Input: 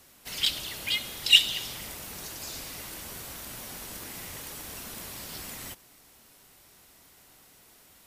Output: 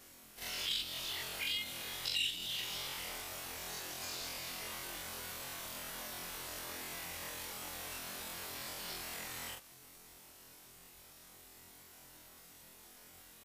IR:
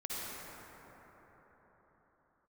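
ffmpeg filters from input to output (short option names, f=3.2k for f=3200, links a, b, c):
-filter_complex "[0:a]afftfilt=real='re':imag='-im':win_size=2048:overlap=0.75,atempo=0.6,acrossover=split=430|5000[a][b][c];[a]acompressor=threshold=-60dB:ratio=4[d];[b]acompressor=threshold=-41dB:ratio=4[e];[c]acompressor=threshold=-50dB:ratio=4[f];[d][e][f]amix=inputs=3:normalize=0,volume=3.5dB"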